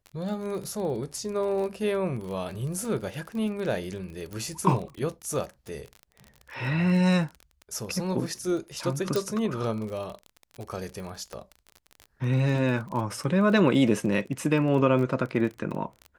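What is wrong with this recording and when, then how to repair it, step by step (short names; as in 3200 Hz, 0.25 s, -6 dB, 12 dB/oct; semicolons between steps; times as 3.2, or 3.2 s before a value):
crackle 33/s -33 dBFS
4.33 pop -24 dBFS
9.16 pop
11.33 pop -24 dBFS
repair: de-click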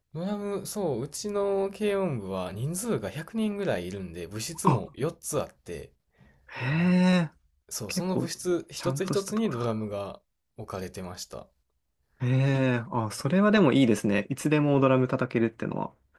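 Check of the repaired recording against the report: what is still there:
11.33 pop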